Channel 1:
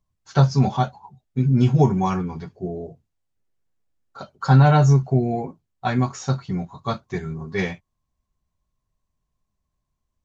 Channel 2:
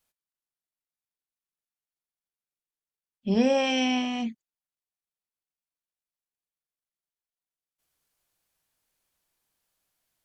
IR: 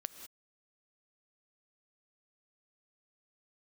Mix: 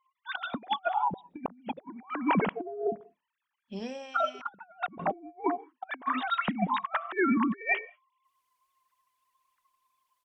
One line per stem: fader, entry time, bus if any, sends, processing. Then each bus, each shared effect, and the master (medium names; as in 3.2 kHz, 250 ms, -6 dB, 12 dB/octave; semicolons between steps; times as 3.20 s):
+2.5 dB, 0.00 s, send -16 dB, formants replaced by sine waves
-14.5 dB, 0.45 s, send -22.5 dB, auto duck -19 dB, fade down 0.45 s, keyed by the first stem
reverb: on, pre-delay 3 ms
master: bass shelf 440 Hz -8.5 dB; compressor with a negative ratio -32 dBFS, ratio -0.5